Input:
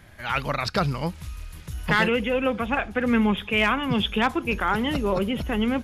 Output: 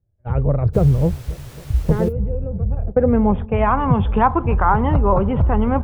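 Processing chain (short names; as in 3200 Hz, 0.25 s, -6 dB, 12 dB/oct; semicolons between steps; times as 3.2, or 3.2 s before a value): gate -31 dBFS, range -37 dB; resonant low shelf 160 Hz +11 dB, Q 1.5; compressor 2:1, threshold -23 dBFS, peak gain reduction 5.5 dB; low-pass sweep 460 Hz -> 970 Hz, 2.61–3.8; 0.73–2.11 added noise pink -51 dBFS; 2.08–2.87 spectral gain 210–10000 Hz -16 dB; dark delay 0.271 s, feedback 73%, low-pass 790 Hz, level -21.5 dB; gain +8 dB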